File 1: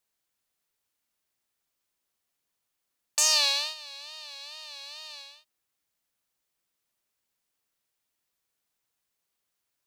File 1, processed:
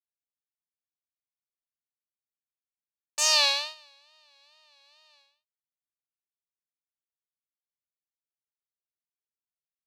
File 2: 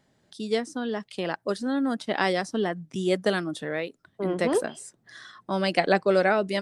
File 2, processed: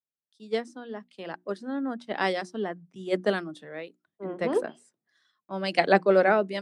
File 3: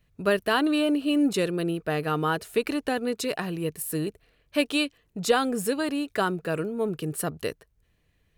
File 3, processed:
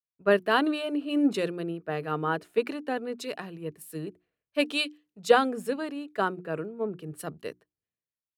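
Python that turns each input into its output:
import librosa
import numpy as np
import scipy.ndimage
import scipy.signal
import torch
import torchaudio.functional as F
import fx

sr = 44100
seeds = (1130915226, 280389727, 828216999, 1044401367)

y = scipy.signal.sosfilt(scipy.signal.butter(2, 150.0, 'highpass', fs=sr, output='sos'), x)
y = fx.high_shelf(y, sr, hz=4700.0, db=-11.0)
y = fx.hum_notches(y, sr, base_hz=60, count=6)
y = fx.band_widen(y, sr, depth_pct=100)
y = F.gain(torch.from_numpy(y), -2.5).numpy()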